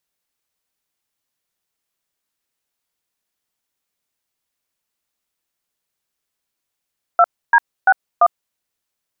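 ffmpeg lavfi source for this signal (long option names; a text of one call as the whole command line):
ffmpeg -f lavfi -i "aevalsrc='0.316*clip(min(mod(t,0.341),0.052-mod(t,0.341))/0.002,0,1)*(eq(floor(t/0.341),0)*(sin(2*PI*697*mod(t,0.341))+sin(2*PI*1336*mod(t,0.341)))+eq(floor(t/0.341),1)*(sin(2*PI*941*mod(t,0.341))+sin(2*PI*1633*mod(t,0.341)))+eq(floor(t/0.341),2)*(sin(2*PI*770*mod(t,0.341))+sin(2*PI*1477*mod(t,0.341)))+eq(floor(t/0.341),3)*(sin(2*PI*697*mod(t,0.341))+sin(2*PI*1209*mod(t,0.341))))':duration=1.364:sample_rate=44100" out.wav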